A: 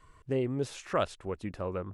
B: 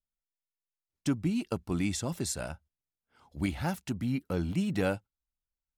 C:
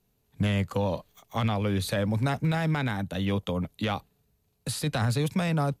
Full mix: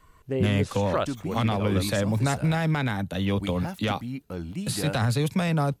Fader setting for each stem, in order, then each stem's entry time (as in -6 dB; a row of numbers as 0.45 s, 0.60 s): +2.0 dB, -3.0 dB, +2.0 dB; 0.00 s, 0.00 s, 0.00 s